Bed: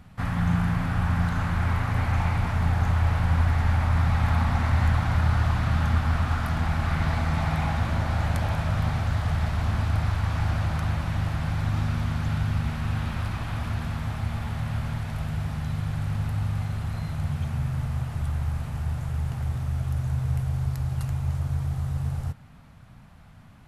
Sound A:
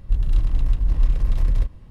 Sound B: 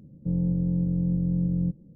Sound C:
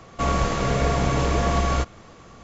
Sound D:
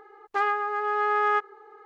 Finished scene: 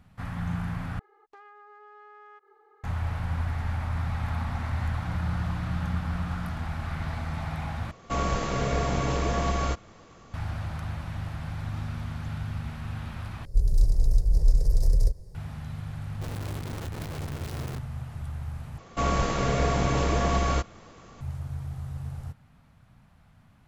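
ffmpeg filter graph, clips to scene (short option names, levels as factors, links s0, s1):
-filter_complex "[3:a]asplit=2[s0][s1];[1:a]asplit=2[s2][s3];[0:a]volume=0.422[s4];[4:a]acompressor=threshold=0.0141:ratio=6:attack=3.2:release=140:knee=1:detection=peak[s5];[2:a]aecho=1:1:5.8:0.69[s6];[s2]firequalizer=gain_entry='entry(170,0);entry(240,-18);entry(400,7);entry(760,-3);entry(1100,-14);entry(1800,-11);entry(2900,-20);entry(4800,11)':delay=0.05:min_phase=1[s7];[s3]aeval=exprs='(mod(15*val(0)+1,2)-1)/15':c=same[s8];[s4]asplit=5[s9][s10][s11][s12][s13];[s9]atrim=end=0.994[s14];[s5]atrim=end=1.85,asetpts=PTS-STARTPTS,volume=0.299[s15];[s10]atrim=start=2.836:end=7.914[s16];[s0]atrim=end=2.43,asetpts=PTS-STARTPTS,volume=0.562[s17];[s11]atrim=start=10.336:end=13.454[s18];[s7]atrim=end=1.9,asetpts=PTS-STARTPTS,volume=0.794[s19];[s12]atrim=start=15.346:end=18.784[s20];[s1]atrim=end=2.43,asetpts=PTS-STARTPTS,volume=0.708[s21];[s13]atrim=start=21.206[s22];[s6]atrim=end=1.95,asetpts=PTS-STARTPTS,volume=0.168,afade=t=in:d=0.004:c=hsin,afade=t=out:st=1.946:d=0.004:c=hsin,adelay=4800[s23];[s8]atrim=end=1.9,asetpts=PTS-STARTPTS,volume=0.266,afade=t=in:d=0.004:c=hsin,afade=t=out:st=1.896:d=0.004:c=hsin,adelay=16120[s24];[s14][s15]acrossfade=d=0.004:c1=hsin:c2=hsin[s25];[s25][s16]acrossfade=d=0.004:c1=hsin:c2=hsin[s26];[s26][s17]acrossfade=d=0.004:c1=hsin:c2=hsin[s27];[s27][s18]acrossfade=d=0.004:c1=hsin:c2=hsin[s28];[s28][s19]acrossfade=d=0.004:c1=hsin:c2=hsin[s29];[s29][s20]acrossfade=d=0.004:c1=hsin:c2=hsin[s30];[s30][s21]acrossfade=d=0.004:c1=hsin:c2=hsin[s31];[s31][s22]acrossfade=d=0.004:c1=hsin:c2=hsin[s32];[s32][s23][s24]amix=inputs=3:normalize=0"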